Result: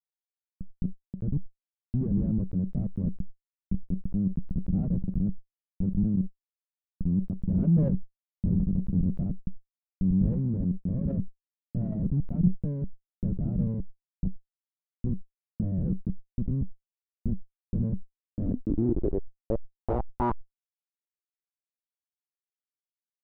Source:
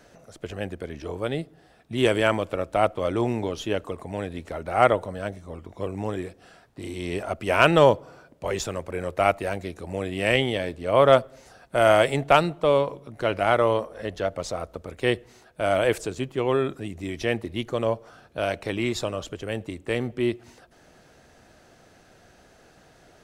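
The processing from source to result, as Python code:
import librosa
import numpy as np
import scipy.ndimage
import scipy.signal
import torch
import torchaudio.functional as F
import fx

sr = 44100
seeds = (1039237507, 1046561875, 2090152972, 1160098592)

y = fx.tremolo_random(x, sr, seeds[0], hz=1.3, depth_pct=70)
y = fx.schmitt(y, sr, flips_db=-25.0)
y = fx.filter_sweep_lowpass(y, sr, from_hz=190.0, to_hz=3900.0, start_s=18.23, end_s=21.94, q=4.9)
y = fx.sustainer(y, sr, db_per_s=47.0)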